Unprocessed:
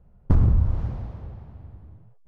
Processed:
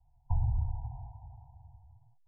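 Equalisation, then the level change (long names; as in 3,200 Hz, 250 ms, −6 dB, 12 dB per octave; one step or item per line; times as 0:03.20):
Chebyshev band-stop filter 140–720 Hz, order 5
linear-phase brick-wall low-pass 1,000 Hz
low-shelf EQ 480 Hz −11 dB
0.0 dB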